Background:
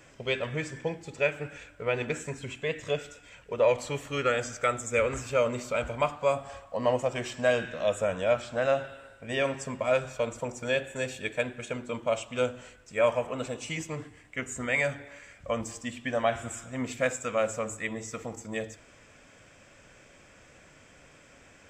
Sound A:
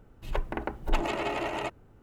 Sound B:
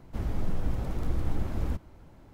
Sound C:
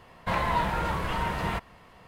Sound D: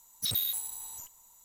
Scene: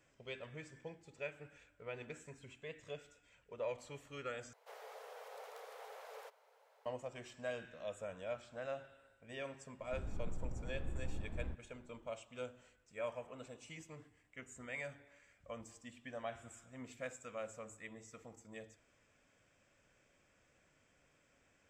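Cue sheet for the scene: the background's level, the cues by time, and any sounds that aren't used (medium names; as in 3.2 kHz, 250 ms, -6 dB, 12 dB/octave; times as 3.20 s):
background -17.5 dB
4.53 s: replace with B -6.5 dB + Chebyshev high-pass 430 Hz, order 8
9.78 s: add B -13 dB + low-pass 1 kHz 6 dB/octave
not used: A, C, D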